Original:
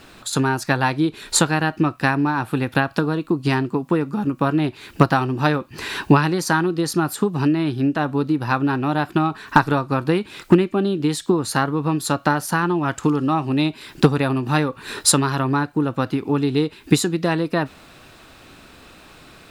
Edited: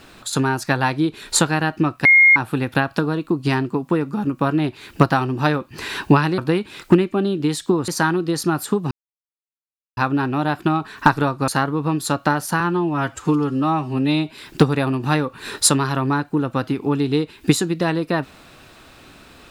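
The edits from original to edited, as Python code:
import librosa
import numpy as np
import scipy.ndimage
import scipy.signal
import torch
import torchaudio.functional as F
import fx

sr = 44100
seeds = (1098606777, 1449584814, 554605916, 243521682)

y = fx.edit(x, sr, fx.bleep(start_s=2.05, length_s=0.31, hz=2140.0, db=-7.5),
    fx.silence(start_s=7.41, length_s=1.06),
    fx.move(start_s=9.98, length_s=1.5, to_s=6.38),
    fx.stretch_span(start_s=12.6, length_s=1.14, factor=1.5), tone=tone)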